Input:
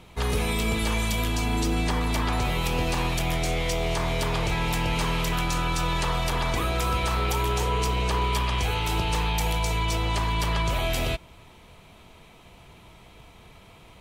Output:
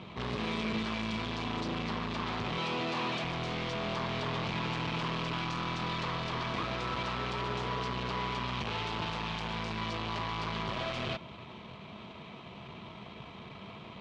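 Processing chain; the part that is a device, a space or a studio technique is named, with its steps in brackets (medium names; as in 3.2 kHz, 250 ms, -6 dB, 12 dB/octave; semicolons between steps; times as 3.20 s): 2.58–3.24 s: high-pass 210 Hz 12 dB/octave; peaking EQ 630 Hz +4 dB 0.23 oct; guitar amplifier (valve stage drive 38 dB, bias 0.55; tone controls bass +2 dB, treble +14 dB; cabinet simulation 110–3500 Hz, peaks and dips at 130 Hz +4 dB, 210 Hz +9 dB, 380 Hz +4 dB, 1.1 kHz +7 dB); trim +3.5 dB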